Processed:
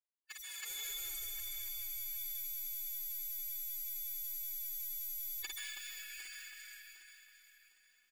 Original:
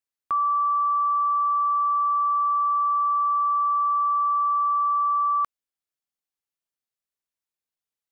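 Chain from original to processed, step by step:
lower of the sound and its delayed copy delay 8 ms
in parallel at −8.5 dB: hard clipping −35 dBFS, distortion −6 dB
on the sum: automatic gain control gain up to 5 dB
Butterworth high-pass 1,200 Hz 72 dB per octave
gate on every frequency bin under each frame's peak −20 dB weak
comb filter 3.9 ms, depth 52%
dense smooth reverb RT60 4.2 s, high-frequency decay 0.7×, pre-delay 120 ms, DRR 3.5 dB
soft clipping −29 dBFS, distortion −24 dB
downward compressor 3 to 1, threshold −57 dBFS, peak gain reduction 15.5 dB
on a send: multi-tap delay 52/323 ms −13.5/−4 dB
on the sum: phase-vocoder pitch shift with formants kept +9 semitones
feedback echo at a low word length 756 ms, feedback 35%, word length 13 bits, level −12 dB
level +7 dB

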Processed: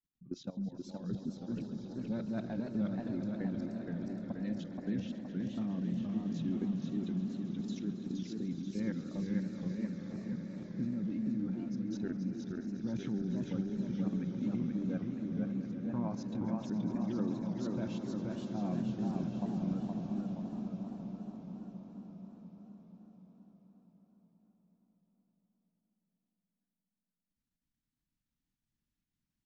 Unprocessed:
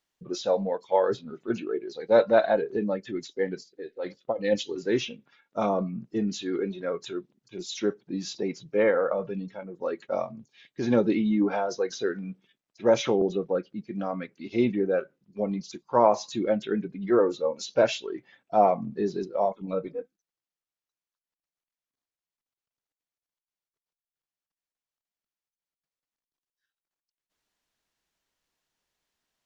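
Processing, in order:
drawn EQ curve 250 Hz 0 dB, 450 Hz −26 dB, 1,800 Hz −20 dB
in parallel at −2 dB: brickwall limiter −28.5 dBFS, peak gain reduction 11 dB
on the sum: output level in coarse steps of 18 dB
echo that builds up and dies away 138 ms, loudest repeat 5, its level −13.5 dB
feedback echo with a swinging delay time 474 ms, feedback 57%, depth 157 cents, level −3 dB

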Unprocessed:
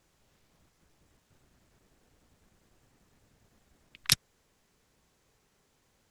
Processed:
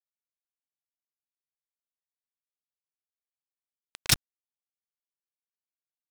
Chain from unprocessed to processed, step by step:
fuzz pedal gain 36 dB, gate −36 dBFS
bit-depth reduction 8 bits, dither none
level −2 dB

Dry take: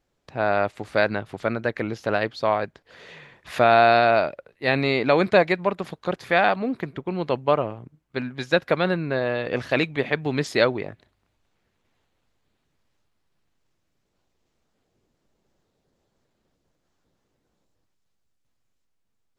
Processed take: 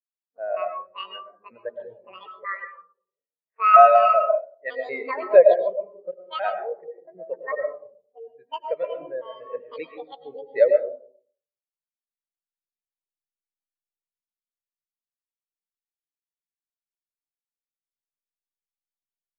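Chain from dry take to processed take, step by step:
pitch shifter gated in a rhythm +10.5 semitones, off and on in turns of 188 ms
mains-hum notches 50/100/150/200/250/300/350/400 Hz
low-pass that shuts in the quiet parts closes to 880 Hz, open at −18 dBFS
octave-band graphic EQ 500/2,000/4,000 Hz +8/+10/+6 dB
convolution reverb RT60 1.2 s, pre-delay 66 ms, DRR 1.5 dB
every bin expanded away from the loudest bin 2.5 to 1
level −7 dB

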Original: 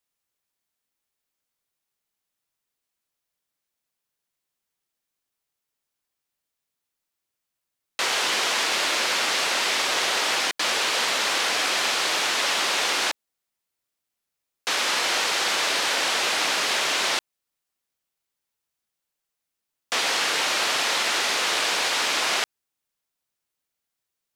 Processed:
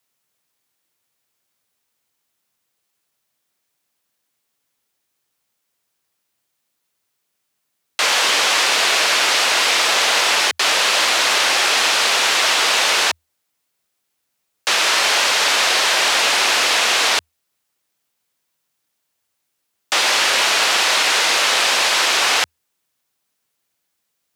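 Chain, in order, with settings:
loose part that buzzes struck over −46 dBFS, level −22 dBFS
in parallel at −3 dB: brickwall limiter −21.5 dBFS, peak gain reduction 11 dB
on the sum: frequency shifter +80 Hz
level +5 dB

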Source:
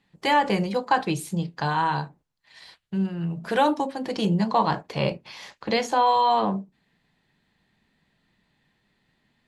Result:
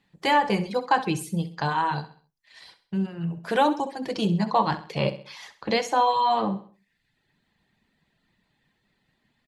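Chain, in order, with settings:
reverb reduction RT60 0.73 s
repeating echo 65 ms, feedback 41%, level −14 dB

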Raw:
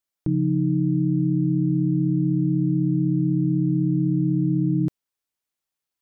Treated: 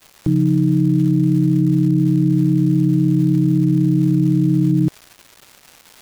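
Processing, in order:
stylus tracing distortion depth 0.067 ms
surface crackle 580 per second −38 dBFS
level +6 dB

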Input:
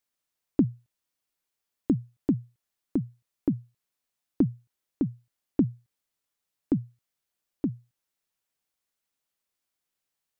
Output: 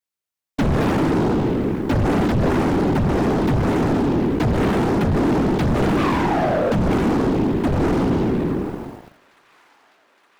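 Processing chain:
peak hold with a decay on every bin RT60 2.54 s
leveller curve on the samples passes 5
sound drawn into the spectrogram fall, 0:05.97–0:06.76, 490–1,200 Hz −18 dBFS
hard clipping −16 dBFS, distortion −14 dB
random phases in short frames
soft clipping −16 dBFS, distortion −13 dB
on a send: delay with a high-pass on its return 865 ms, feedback 71%, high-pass 1,400 Hz, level −21.5 dB
on the sum: level +2.5 dB

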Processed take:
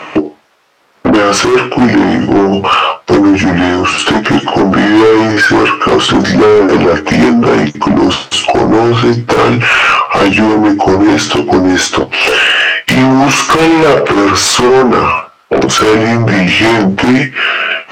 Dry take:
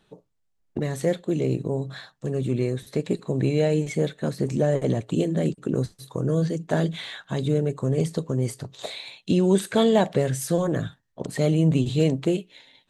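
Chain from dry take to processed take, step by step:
mid-hump overdrive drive 26 dB, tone 1,900 Hz, clips at −7.5 dBFS
transient designer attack +12 dB, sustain −1 dB
flanger 0.38 Hz, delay 9.1 ms, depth 3.1 ms, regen +29%
speed change −28%
high-pass filter 970 Hz 6 dB per octave
in parallel at −11.5 dB: sine wavefolder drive 14 dB, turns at −10 dBFS
on the sum: downward compressor, threshold −24 dBFS, peak gain reduction 10.5 dB
high-shelf EQ 2,900 Hz −7.5 dB
boost into a limiter +25.5 dB
level −1 dB

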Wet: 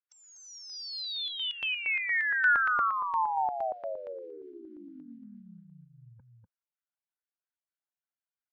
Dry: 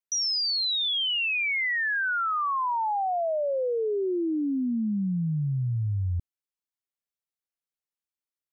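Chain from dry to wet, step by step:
three-way crossover with the lows and the highs turned down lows −16 dB, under 410 Hz, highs −20 dB, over 2,700 Hz
phase-vocoder pitch shift with formants kept +4.5 semitones
loudspeaker in its box 120–5,400 Hz, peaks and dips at 140 Hz −5 dB, 440 Hz −9 dB, 860 Hz +3 dB, 1,500 Hz +9 dB
single-tap delay 245 ms −3.5 dB
notch on a step sequencer 8.6 Hz 620–3,200 Hz
level −2.5 dB

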